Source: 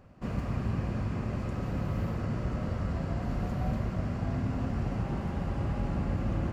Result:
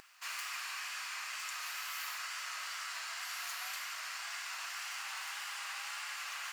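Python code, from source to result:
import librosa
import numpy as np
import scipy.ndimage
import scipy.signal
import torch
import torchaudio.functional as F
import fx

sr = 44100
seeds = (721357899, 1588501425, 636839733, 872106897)

y = scipy.signal.sosfilt(scipy.signal.bessel(6, 1700.0, 'highpass', norm='mag', fs=sr, output='sos'), x)
y = fx.tilt_eq(y, sr, slope=4.0)
y = fx.wow_flutter(y, sr, seeds[0], rate_hz=2.1, depth_cents=45.0)
y = y * 10.0 ** (6.5 / 20.0)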